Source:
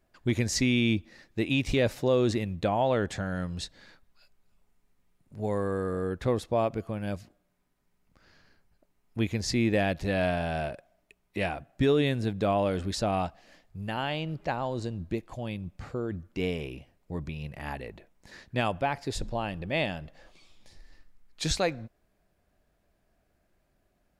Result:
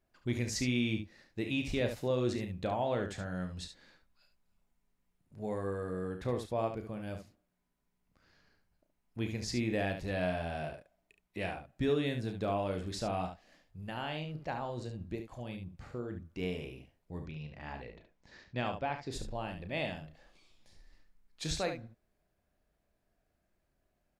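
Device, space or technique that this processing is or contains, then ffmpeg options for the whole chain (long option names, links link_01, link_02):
slapback doubling: -filter_complex "[0:a]asettb=1/sr,asplit=3[link_01][link_02][link_03];[link_01]atrim=end=17.224[link_04];[link_02]atrim=start=17.22:end=19.11,asetpts=PTS-STARTPTS,afade=type=in:duration=0.004:curve=qsin,afade=type=out:start_time=1.886:duration=0.004:curve=qsin,lowpass=frequency=6300:width=0.5412,lowpass=frequency=6300:width=1.3066[link_05];[link_03]atrim=start=19.106[link_06];[link_04][link_05]acrossfade=duration=0.004:curve1=hsin:curve2=qsin[link_07];[link_07][link_06]acrossfade=duration=0.004:curve1=qsin:curve2=hsin,asplit=3[link_08][link_09][link_10];[link_09]adelay=33,volume=-9dB[link_11];[link_10]adelay=71,volume=-8dB[link_12];[link_08][link_11][link_12]amix=inputs=3:normalize=0,volume=-8dB"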